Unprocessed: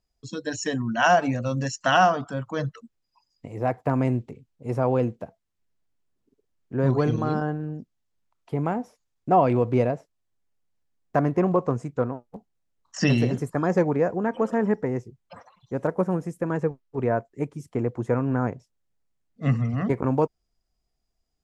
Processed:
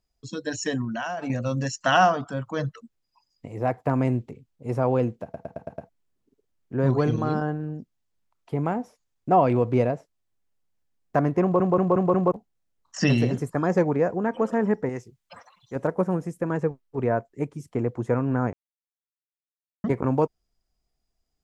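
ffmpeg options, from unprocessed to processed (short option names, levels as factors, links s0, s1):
-filter_complex "[0:a]asettb=1/sr,asplit=3[s0][s1][s2];[s0]atrim=end=0.844[s3];[s1]atrim=start=0.84:end=1.3,asetpts=PTS-STARTPTS,afade=t=in:d=0.004:c=qsin,afade=t=out:st=0.456:d=0.004:c=qsin,acompressor=threshold=0.0501:ratio=16:attack=3.2:release=140:knee=1:detection=peak[s4];[s2]atrim=start=1.296[s5];[s3][s4]acrossfade=d=0.004:c1=hsin:c2=qsin[s6];[s6][s5]acrossfade=d=0.004:c1=qsin:c2=hsin,asettb=1/sr,asplit=3[s7][s8][s9];[s7]atrim=end=14.894[s10];[s8]atrim=start=14.89:end=15.76,asetpts=PTS-STARTPTS,afade=t=in:d=0.004:c=qsin,afade=t=out:st=0.866:d=0.004:c=qsin,tiltshelf=f=1100:g=-6[s11];[s9]atrim=start=15.756[s12];[s10][s11]acrossfade=d=0.004:c1=hsin:c2=qsin[s13];[s13][s12]acrossfade=d=0.004:c1=qsin:c2=hsin,asplit=14[s14][s15][s16][s17][s18][s19][s20][s21][s22][s23][s24][s25][s26][s27];[s14]atrim=end=5.342[s28];[s15]atrim=start=5.228:end=5.342[s29];[s16]atrim=start=5.228:end=5.342[s30];[s17]atrim=start=5.228:end=5.342[s31];[s18]atrim=start=5.228:end=5.342[s32];[s19]atrim=start=5.228:end=5.342[s33];[s20]atrim=start=5.888:end=11.602[s34];[s21]atrim=start=11.418:end=11.602[s35];[s22]atrim=start=11.418:end=11.602[s36];[s23]atrim=start=11.418:end=11.602[s37];[s24]atrim=start=11.418:end=11.602[s38];[s25]atrim=start=12.318:end=18.53,asetpts=PTS-STARTPTS,afade=t=out:st=6.208:d=0.004:c=hsin[s39];[s26]atrim=start=18.53:end=19.84,asetpts=PTS-STARTPTS,volume=0[s40];[s27]atrim=start=19.84,asetpts=PTS-STARTPTS,afade=t=in:d=0.004:c=hsin[s41];[s28][s29]acrossfade=d=0.004:c1=hsin:c2=hsin[s42];[s42][s30]acrossfade=d=0.004:c1=hsin:c2=hsin[s43];[s43][s31]acrossfade=d=0.004:c1=hsin:c2=hsin[s44];[s44][s32]acrossfade=d=0.004:c1=hsin:c2=hsin[s45];[s45][s33]acrossfade=d=0.004:c1=hsin:c2=hsin[s46];[s46][s34]acrossfade=d=0.004:c1=hsin:c2=hsin[s47];[s47][s35]acrossfade=d=0.004:c1=hsin:c2=hsin[s48];[s48][s36]acrossfade=d=0.004:c1=hsin:c2=hsin[s49];[s49][s37]acrossfade=d=0.004:c1=hsin:c2=hsin[s50];[s50][s38]acrossfade=d=0.004:c1=hsin:c2=hsin[s51];[s39][s40][s41]concat=n=3:v=0:a=1[s52];[s51][s52]acrossfade=d=0.004:c1=hsin:c2=hsin"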